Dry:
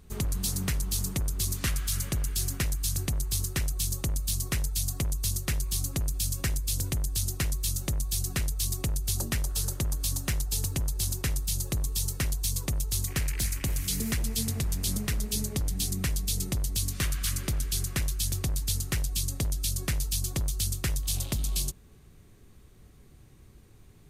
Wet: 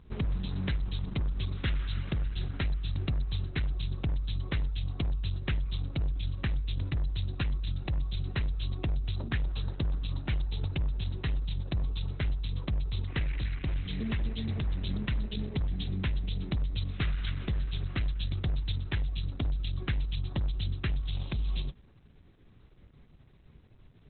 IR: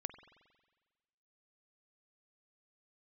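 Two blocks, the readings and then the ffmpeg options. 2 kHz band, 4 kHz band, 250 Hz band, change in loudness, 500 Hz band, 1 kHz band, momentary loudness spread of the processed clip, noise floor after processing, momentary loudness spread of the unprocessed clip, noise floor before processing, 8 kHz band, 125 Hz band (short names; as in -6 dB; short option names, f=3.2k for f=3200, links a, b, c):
-2.5 dB, -6.5 dB, -1.0 dB, -3.5 dB, -2.5 dB, -2.5 dB, 2 LU, -58 dBFS, 2 LU, -54 dBFS, under -40 dB, -0.5 dB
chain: -ar 48000 -c:a libopus -b:a 8k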